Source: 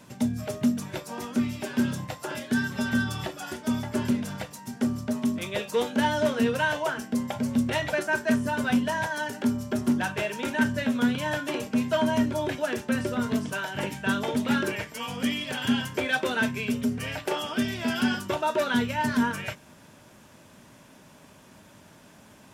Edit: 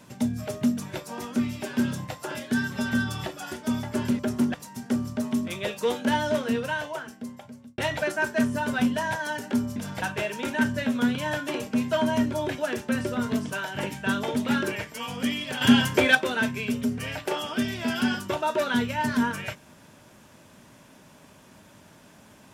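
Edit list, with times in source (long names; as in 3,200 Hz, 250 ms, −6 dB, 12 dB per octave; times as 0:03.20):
0:04.19–0:04.45: swap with 0:09.67–0:10.02
0:06.05–0:07.69: fade out
0:15.61–0:16.15: clip gain +7.5 dB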